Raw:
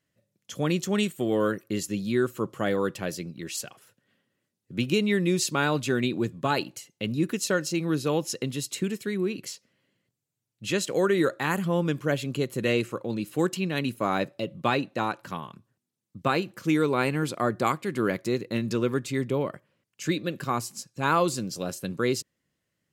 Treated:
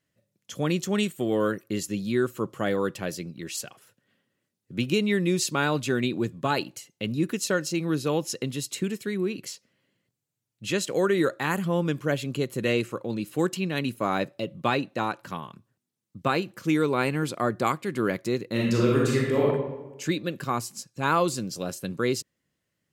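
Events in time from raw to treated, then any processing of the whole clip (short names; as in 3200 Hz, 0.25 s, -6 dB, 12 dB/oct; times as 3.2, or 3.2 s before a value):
18.51–19.45 reverb throw, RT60 1.1 s, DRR -4 dB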